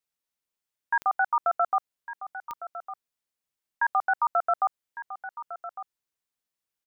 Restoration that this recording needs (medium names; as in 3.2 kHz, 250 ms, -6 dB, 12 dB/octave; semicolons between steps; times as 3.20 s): de-click; inverse comb 1155 ms -13.5 dB